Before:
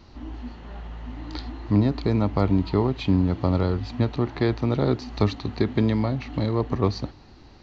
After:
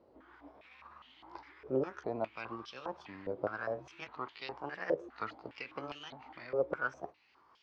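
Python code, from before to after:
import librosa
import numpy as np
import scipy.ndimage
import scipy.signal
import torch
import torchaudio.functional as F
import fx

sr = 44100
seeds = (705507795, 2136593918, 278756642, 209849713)

y = fx.pitch_ramps(x, sr, semitones=6.0, every_ms=1017)
y = fx.filter_held_bandpass(y, sr, hz=4.9, low_hz=520.0, high_hz=3200.0)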